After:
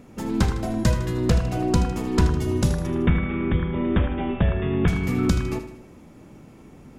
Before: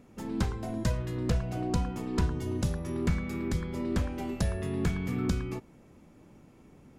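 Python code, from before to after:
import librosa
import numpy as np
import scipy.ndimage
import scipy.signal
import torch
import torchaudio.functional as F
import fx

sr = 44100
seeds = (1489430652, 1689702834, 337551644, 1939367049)

y = fx.brickwall_lowpass(x, sr, high_hz=3700.0, at=(2.86, 4.88))
y = fx.echo_feedback(y, sr, ms=78, feedback_pct=51, wet_db=-11)
y = y * 10.0 ** (8.5 / 20.0)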